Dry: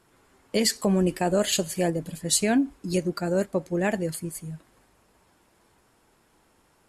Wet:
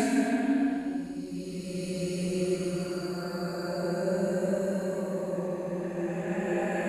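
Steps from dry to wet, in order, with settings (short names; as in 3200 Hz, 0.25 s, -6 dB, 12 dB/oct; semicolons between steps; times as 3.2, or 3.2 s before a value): pre-echo 0.196 s -16 dB; Paulstretch 5.1×, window 0.50 s, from 2.51; gain -4.5 dB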